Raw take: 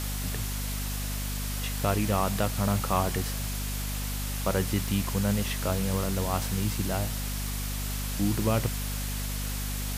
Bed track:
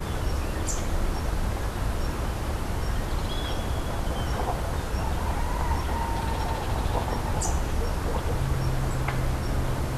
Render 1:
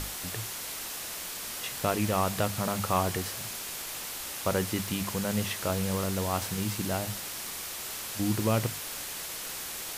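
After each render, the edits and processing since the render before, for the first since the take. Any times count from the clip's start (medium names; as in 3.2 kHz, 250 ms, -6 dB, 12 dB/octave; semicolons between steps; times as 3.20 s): hum notches 50/100/150/200/250 Hz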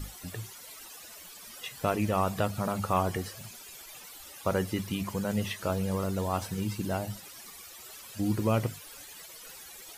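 noise reduction 15 dB, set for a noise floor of -38 dBFS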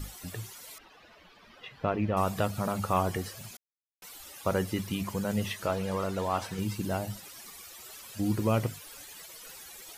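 0.78–2.17 s: distance through air 310 m; 3.57–4.02 s: mute; 5.66–6.59 s: overdrive pedal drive 10 dB, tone 2.7 kHz, clips at -15.5 dBFS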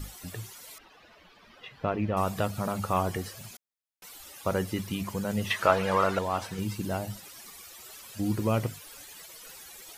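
5.50–6.19 s: peaking EQ 1.4 kHz +12 dB 2.8 oct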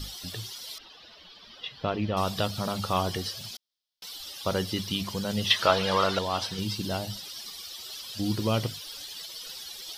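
high-order bell 4.1 kHz +13 dB 1.1 oct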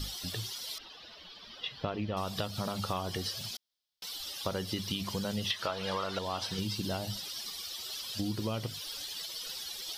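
compression 10:1, threshold -30 dBFS, peak gain reduction 15 dB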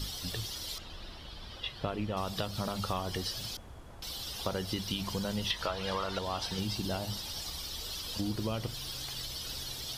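add bed track -21 dB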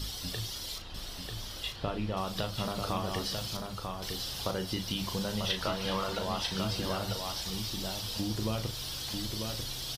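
doubling 37 ms -8.5 dB; delay 943 ms -5 dB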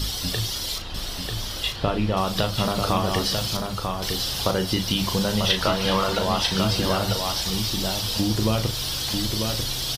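trim +10.5 dB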